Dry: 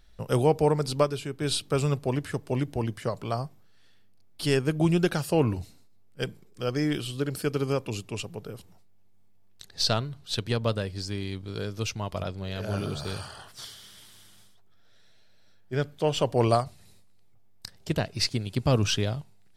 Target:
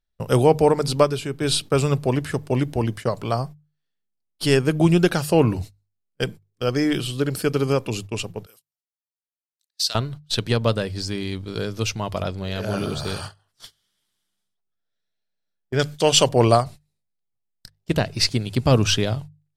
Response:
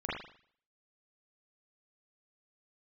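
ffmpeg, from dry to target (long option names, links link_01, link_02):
-filter_complex "[0:a]asettb=1/sr,asplit=3[link_01][link_02][link_03];[link_01]atrim=end=15.794[link_04];[link_02]atrim=start=15.79:end=16.29,asetpts=PTS-STARTPTS,afade=type=in:duration=0.004:curve=qsin,afade=type=out:start_time=0.496:duration=0.004:curve=qsin,equalizer=frequency=7100:width=0.4:gain=13.5[link_05];[link_03]atrim=start=16.286[link_06];[link_04][link_05]acrossfade=duration=0.004:curve1=hsin:curve2=qsin[link_07];[link_07][link_06]acrossfade=duration=0.004:curve1=qsin:curve2=hsin,agate=range=-30dB:threshold=-39dB:ratio=16:detection=peak,bandreject=frequency=50:width_type=h:width=6,bandreject=frequency=100:width_type=h:width=6,bandreject=frequency=150:width_type=h:width=6,asettb=1/sr,asplit=3[link_08][link_09][link_10];[link_08]atrim=end=8.464[link_11];[link_09]atrim=start=8.46:end=9.95,asetpts=PTS-STARTPTS,afade=type=in:duration=0.004:curve=qsin,afade=type=out:start_time=1.486:duration=0.004:curve=qsin,aderivative[link_12];[link_10]atrim=start=9.946[link_13];[link_11][link_12]acrossfade=duration=0.004:curve1=hsin:curve2=qsin[link_14];[link_14][link_13]acrossfade=duration=0.004:curve1=qsin:curve2=hsin,volume=6.5dB"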